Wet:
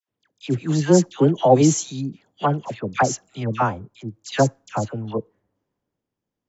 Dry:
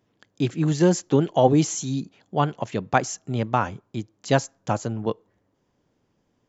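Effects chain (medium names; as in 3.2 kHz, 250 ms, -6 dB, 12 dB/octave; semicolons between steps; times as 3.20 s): phase dispersion lows, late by 87 ms, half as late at 1.2 kHz; three bands expanded up and down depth 40%; trim +1.5 dB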